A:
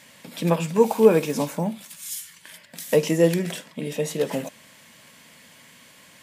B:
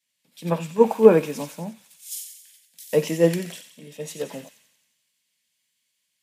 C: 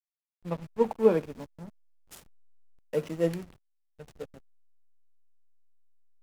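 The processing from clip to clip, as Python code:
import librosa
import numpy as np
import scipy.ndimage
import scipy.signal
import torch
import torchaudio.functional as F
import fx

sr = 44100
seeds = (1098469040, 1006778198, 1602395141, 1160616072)

y1 = fx.echo_wet_highpass(x, sr, ms=90, feedback_pct=74, hz=2400.0, wet_db=-6.5)
y1 = fx.band_widen(y1, sr, depth_pct=100)
y1 = F.gain(torch.from_numpy(y1), -6.0).numpy()
y2 = fx.backlash(y1, sr, play_db=-24.0)
y2 = F.gain(torch.from_numpy(y2), -8.5).numpy()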